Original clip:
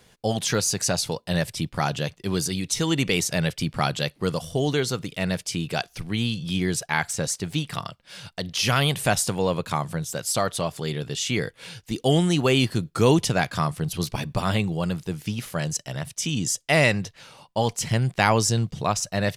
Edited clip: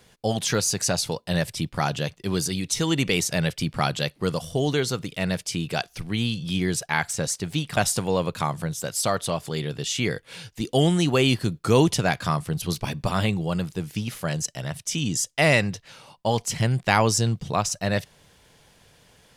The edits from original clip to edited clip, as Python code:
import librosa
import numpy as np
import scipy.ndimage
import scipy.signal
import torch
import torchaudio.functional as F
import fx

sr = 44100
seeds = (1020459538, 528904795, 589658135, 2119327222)

y = fx.edit(x, sr, fx.cut(start_s=7.77, length_s=1.31), tone=tone)